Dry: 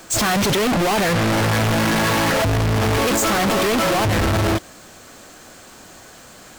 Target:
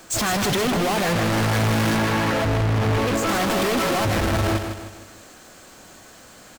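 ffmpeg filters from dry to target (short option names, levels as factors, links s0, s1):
-filter_complex "[0:a]asettb=1/sr,asplit=3[s0][s1][s2];[s0]atrim=end=1.964[s3];[s1]atrim=start=1.96:end=3.29,asetpts=PTS-STARTPTS,afade=t=in:d=0.004:c=qsin,afade=t=out:st=1.326:d=0.004:c=qsin,highshelf=f=5100:g=-9.5[s4];[s2]atrim=start=3.286[s5];[s3][s4]acrossfade=d=0.004:c1=hsin:c2=qsin[s6];[s6][s5]acrossfade=d=0.004:c1=qsin:c2=hsin,asplit=2[s7][s8];[s8]aecho=0:1:155|310|465|620|775:0.422|0.186|0.0816|0.0359|0.0158[s9];[s7][s9]amix=inputs=2:normalize=0,volume=0.631"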